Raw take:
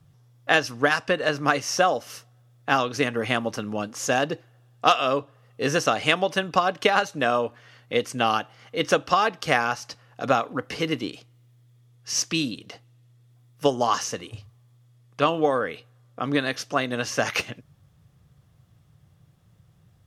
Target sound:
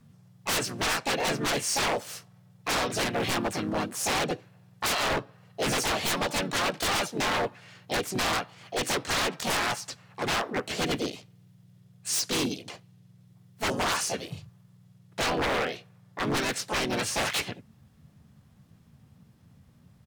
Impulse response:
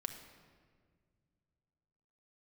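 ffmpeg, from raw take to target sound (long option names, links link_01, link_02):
-filter_complex "[0:a]asplit=4[link_01][link_02][link_03][link_04];[link_02]asetrate=37084,aresample=44100,atempo=1.18921,volume=-6dB[link_05];[link_03]asetrate=52444,aresample=44100,atempo=0.840896,volume=-4dB[link_06];[link_04]asetrate=66075,aresample=44100,atempo=0.66742,volume=-1dB[link_07];[link_01][link_05][link_06][link_07]amix=inputs=4:normalize=0,aeval=exprs='0.119*(abs(mod(val(0)/0.119+3,4)-2)-1)':channel_layout=same,volume=-3dB"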